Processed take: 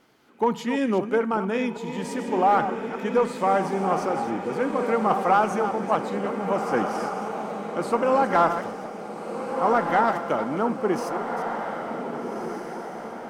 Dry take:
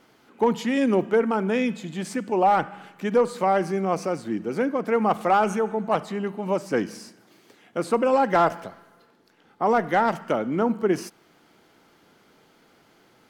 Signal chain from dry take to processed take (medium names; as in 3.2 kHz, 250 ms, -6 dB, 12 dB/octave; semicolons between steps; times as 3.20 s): chunks repeated in reverse 197 ms, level -10 dB; echo that smears into a reverb 1584 ms, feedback 59%, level -6.5 dB; dynamic bell 1.1 kHz, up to +5 dB, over -33 dBFS, Q 1.5; trim -3 dB